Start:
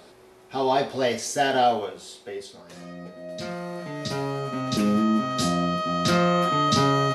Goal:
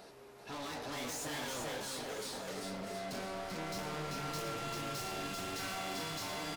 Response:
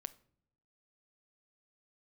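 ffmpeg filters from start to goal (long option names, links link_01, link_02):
-af "afftfilt=real='re*lt(hypot(re,im),0.316)':imag='im*lt(hypot(re,im),0.316)':win_size=1024:overlap=0.75,dynaudnorm=framelen=230:gausssize=9:maxgain=7.5dB,asoftclip=type=tanh:threshold=-37dB,flanger=delay=5.8:depth=6.1:regen=-61:speed=0.62:shape=triangular,asetrate=48000,aresample=44100,aecho=1:1:390|721.5|1003|1243|1446:0.631|0.398|0.251|0.158|0.1"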